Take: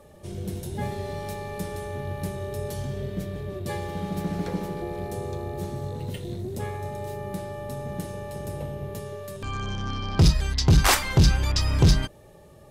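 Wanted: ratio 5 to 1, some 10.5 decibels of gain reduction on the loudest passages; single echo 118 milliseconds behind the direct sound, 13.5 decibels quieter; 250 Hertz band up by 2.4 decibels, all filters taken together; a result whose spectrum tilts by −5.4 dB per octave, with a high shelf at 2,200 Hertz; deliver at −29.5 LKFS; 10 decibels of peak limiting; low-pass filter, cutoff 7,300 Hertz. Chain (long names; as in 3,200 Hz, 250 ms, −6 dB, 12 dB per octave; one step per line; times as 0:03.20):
low-pass filter 7,300 Hz
parametric band 250 Hz +4 dB
high-shelf EQ 2,200 Hz +6.5 dB
downward compressor 5 to 1, threshold −24 dBFS
brickwall limiter −21.5 dBFS
single-tap delay 118 ms −13.5 dB
level +3 dB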